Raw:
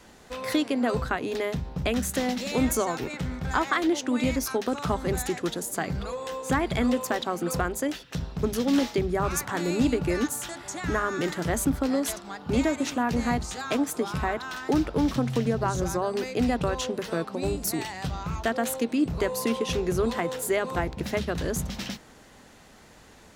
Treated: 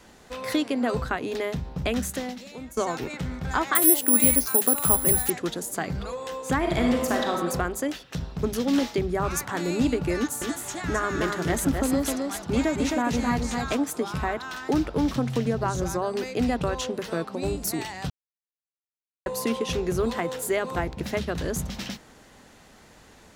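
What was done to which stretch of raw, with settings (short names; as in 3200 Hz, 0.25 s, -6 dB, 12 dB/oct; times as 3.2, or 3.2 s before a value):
2.01–2.77 fade out quadratic, to -17.5 dB
3.75–5.3 careless resampling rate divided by 4×, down filtered, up zero stuff
6.58–7.34 reverb throw, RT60 1.2 s, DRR 0.5 dB
10.15–13.75 echo 0.263 s -4 dB
18.1–19.26 mute
19.88–20.82 short-mantissa float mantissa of 6-bit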